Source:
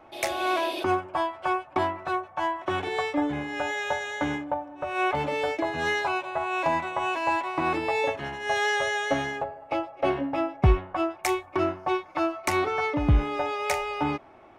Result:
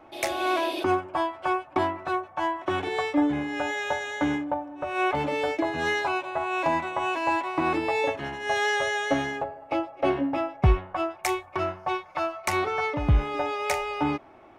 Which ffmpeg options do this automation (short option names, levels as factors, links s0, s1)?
-af "asetnsamples=n=441:p=0,asendcmd='10.37 equalizer g -6;11.5 equalizer g -14;12.53 equalizer g -5.5;13.34 equalizer g 2.5',equalizer=f=300:t=o:w=0.44:g=4.5"